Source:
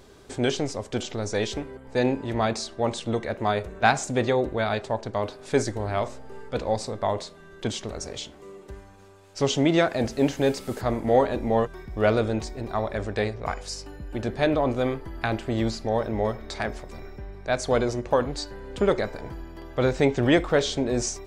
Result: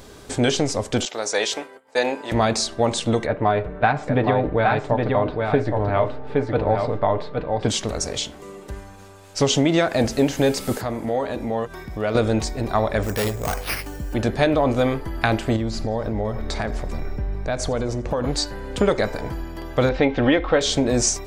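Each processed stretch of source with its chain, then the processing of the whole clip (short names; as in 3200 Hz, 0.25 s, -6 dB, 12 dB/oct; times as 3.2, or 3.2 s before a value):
1.05–2.32 expander -36 dBFS + HPF 530 Hz
3.26–7.68 air absorption 430 m + comb 6.7 ms, depth 38% + echo 0.817 s -5 dB
10.77–12.15 HPF 91 Hz 6 dB/oct + compressor 2:1, threshold -36 dBFS
13.03–14.14 careless resampling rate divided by 6×, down none, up hold + hard clip -27 dBFS
15.56–18.24 tilt -1.5 dB/oct + compressor 4:1, threshold -29 dBFS + feedback echo 86 ms, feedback 60%, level -21.5 dB
19.89–20.61 LPF 3800 Hz 24 dB/oct + bell 190 Hz -6.5 dB 0.64 oct + comb 3.8 ms, depth 41%
whole clip: notch 380 Hz, Q 12; compressor, threshold -22 dBFS; high shelf 8100 Hz +6 dB; gain +8 dB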